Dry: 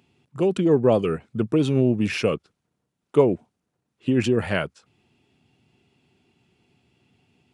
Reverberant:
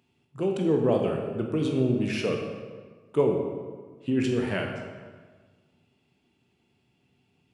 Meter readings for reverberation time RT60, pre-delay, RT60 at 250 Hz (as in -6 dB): 1.5 s, 15 ms, 1.6 s